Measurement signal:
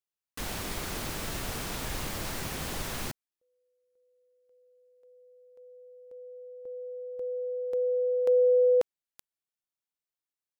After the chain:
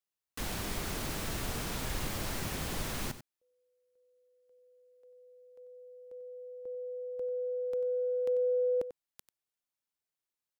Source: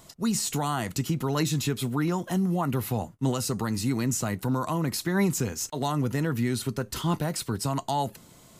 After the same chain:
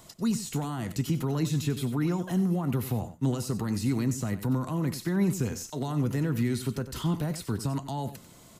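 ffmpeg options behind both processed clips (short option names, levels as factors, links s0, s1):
-filter_complex "[0:a]acrossover=split=360[s0][s1];[s1]acompressor=threshold=0.0224:ratio=6:attack=0.39:release=102:knee=2.83:detection=peak[s2];[s0][s2]amix=inputs=2:normalize=0,aecho=1:1:93:0.224"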